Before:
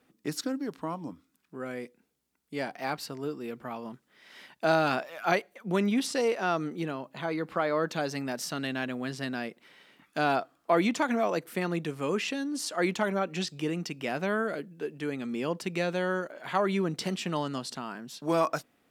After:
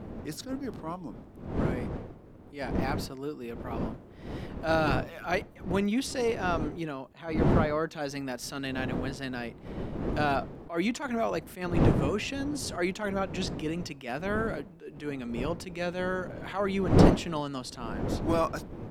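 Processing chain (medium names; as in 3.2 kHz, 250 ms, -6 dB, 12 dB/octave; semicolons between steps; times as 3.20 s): wind noise 330 Hz -31 dBFS; attacks held to a fixed rise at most 160 dB/s; trim -1.5 dB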